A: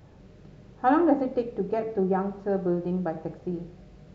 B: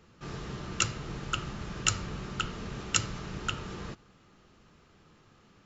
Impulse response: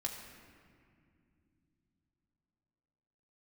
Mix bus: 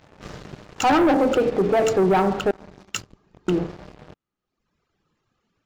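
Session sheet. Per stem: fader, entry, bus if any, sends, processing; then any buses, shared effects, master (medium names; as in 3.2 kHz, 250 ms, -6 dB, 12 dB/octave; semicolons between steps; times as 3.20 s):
+1.5 dB, 0.00 s, muted 2.51–3.48 s, send -19 dB, overdrive pedal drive 11 dB, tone 1.9 kHz, clips at -8.5 dBFS
-2.5 dB, 0.00 s, no send, reverb removal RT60 1.8 s; hum notches 50/100/150/200 Hz; auto duck -8 dB, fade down 0.65 s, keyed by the first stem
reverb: on, pre-delay 3 ms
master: waveshaping leveller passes 3; peak limiter -13.5 dBFS, peak gain reduction 6 dB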